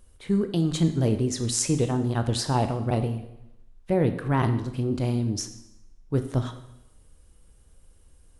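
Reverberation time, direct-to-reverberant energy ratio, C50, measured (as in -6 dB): 0.85 s, 7.5 dB, 10.5 dB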